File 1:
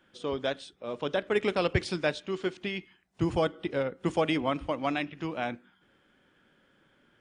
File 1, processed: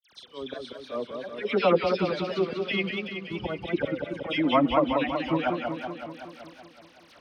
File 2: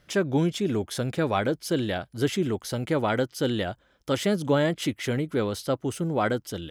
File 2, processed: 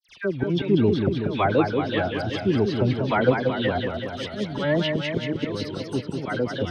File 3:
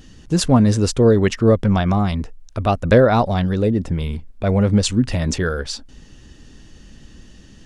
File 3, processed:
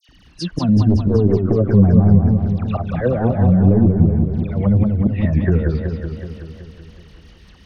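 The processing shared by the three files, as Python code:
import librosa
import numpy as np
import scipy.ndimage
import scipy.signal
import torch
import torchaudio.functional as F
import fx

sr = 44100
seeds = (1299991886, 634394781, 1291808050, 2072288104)

p1 = fx.bin_expand(x, sr, power=1.5)
p2 = fx.dmg_crackle(p1, sr, seeds[0], per_s=56.0, level_db=-42.0)
p3 = fx.highpass(p2, sr, hz=71.0, slope=6)
p4 = fx.auto_swell(p3, sr, attack_ms=359.0)
p5 = fx.level_steps(p4, sr, step_db=13)
p6 = p4 + (p5 * 10.0 ** (-1.0 / 20.0))
p7 = fx.dispersion(p6, sr, late='lows', ms=90.0, hz=2000.0)
p8 = fx.fold_sine(p7, sr, drive_db=9, ceiling_db=-3.0)
p9 = fx.env_lowpass_down(p8, sr, base_hz=340.0, full_db=-7.5)
p10 = scipy.signal.savgol_filter(p9, 15, 4, mode='constant')
p11 = fx.echo_warbled(p10, sr, ms=188, feedback_pct=66, rate_hz=2.8, cents=141, wet_db=-5.0)
y = p11 * 10.0 ** (-4.0 / 20.0)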